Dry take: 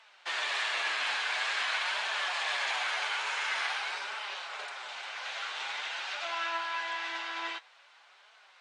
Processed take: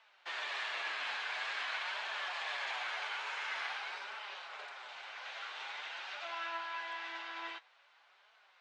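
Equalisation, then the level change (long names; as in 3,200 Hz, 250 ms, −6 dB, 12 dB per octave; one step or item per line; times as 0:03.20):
high-frequency loss of the air 62 metres
high-shelf EQ 6,800 Hz −4.5 dB
−6.0 dB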